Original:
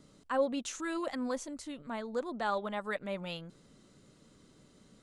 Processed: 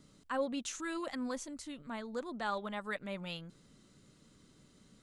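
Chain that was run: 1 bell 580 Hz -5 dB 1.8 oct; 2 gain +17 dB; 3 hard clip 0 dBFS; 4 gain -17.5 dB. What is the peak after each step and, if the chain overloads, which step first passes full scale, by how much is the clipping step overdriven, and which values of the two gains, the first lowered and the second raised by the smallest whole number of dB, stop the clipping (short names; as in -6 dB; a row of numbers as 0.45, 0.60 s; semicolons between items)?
-22.5, -5.5, -5.5, -23.0 dBFS; no overload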